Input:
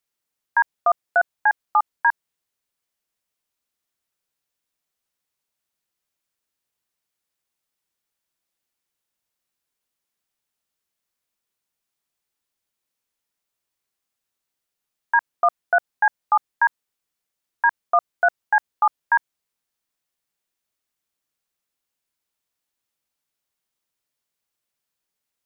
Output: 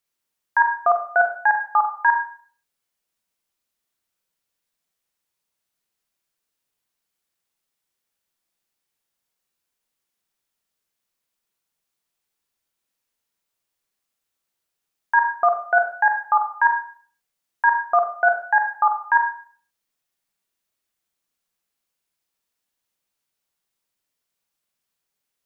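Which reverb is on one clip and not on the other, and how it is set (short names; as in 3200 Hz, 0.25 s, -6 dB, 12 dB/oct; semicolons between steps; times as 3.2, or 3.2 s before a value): Schroeder reverb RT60 0.47 s, combs from 33 ms, DRR 3.5 dB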